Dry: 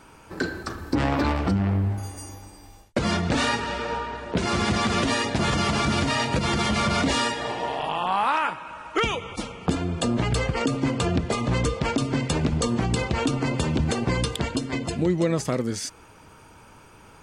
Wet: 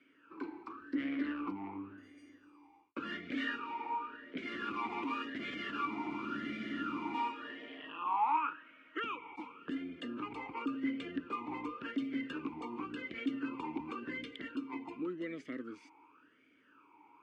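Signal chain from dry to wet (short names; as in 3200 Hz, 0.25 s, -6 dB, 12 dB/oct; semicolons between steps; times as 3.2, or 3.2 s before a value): three-band isolator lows -16 dB, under 420 Hz, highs -12 dB, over 2300 Hz; spectral freeze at 5.9, 1.23 s; vowel sweep i-u 0.91 Hz; gain +3.5 dB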